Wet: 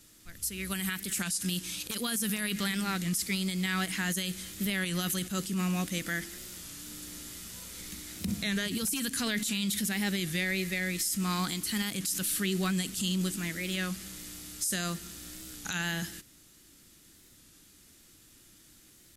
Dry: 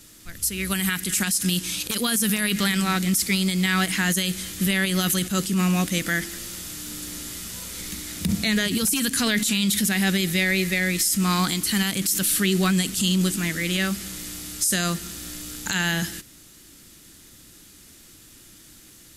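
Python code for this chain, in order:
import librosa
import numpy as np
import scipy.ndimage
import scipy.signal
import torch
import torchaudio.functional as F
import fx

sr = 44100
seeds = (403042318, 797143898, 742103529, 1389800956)

y = fx.record_warp(x, sr, rpm=33.33, depth_cents=100.0)
y = y * 10.0 ** (-9.0 / 20.0)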